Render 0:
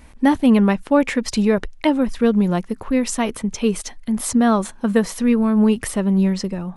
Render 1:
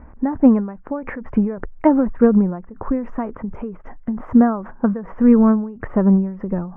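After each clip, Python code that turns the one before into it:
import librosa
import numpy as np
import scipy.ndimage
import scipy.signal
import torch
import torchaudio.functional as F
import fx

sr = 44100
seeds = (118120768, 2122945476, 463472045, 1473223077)

y = scipy.signal.sosfilt(scipy.signal.cheby2(4, 50, 3800.0, 'lowpass', fs=sr, output='sos'), x)
y = fx.end_taper(y, sr, db_per_s=100.0)
y = F.gain(torch.from_numpy(y), 5.0).numpy()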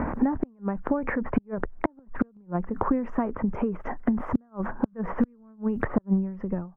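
y = fx.fade_out_tail(x, sr, length_s=1.03)
y = fx.gate_flip(y, sr, shuts_db=-8.0, range_db=-41)
y = fx.band_squash(y, sr, depth_pct=100)
y = F.gain(torch.from_numpy(y), -1.5).numpy()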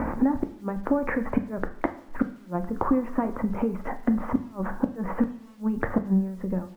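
y = fx.quant_dither(x, sr, seeds[0], bits=10, dither='none')
y = fx.hum_notches(y, sr, base_hz=50, count=4)
y = fx.rev_double_slope(y, sr, seeds[1], early_s=0.47, late_s=1.7, knee_db=-18, drr_db=7.5)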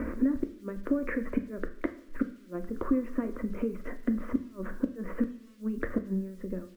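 y = fx.fixed_phaser(x, sr, hz=340.0, stages=4)
y = F.gain(torch.from_numpy(y), -2.5).numpy()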